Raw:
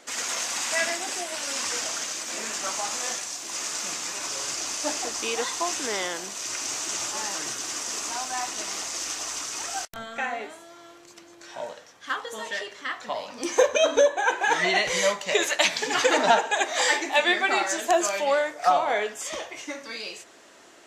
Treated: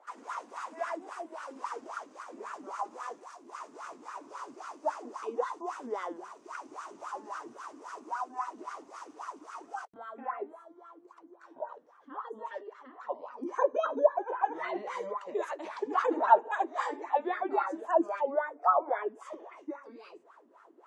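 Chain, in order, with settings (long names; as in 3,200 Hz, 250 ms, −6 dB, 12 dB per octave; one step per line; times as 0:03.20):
graphic EQ with 15 bands 400 Hz +6 dB, 1,000 Hz +9 dB, 10,000 Hz +12 dB
gate on every frequency bin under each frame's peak −30 dB strong
LFO wah 3.7 Hz 240–1,400 Hz, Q 6.3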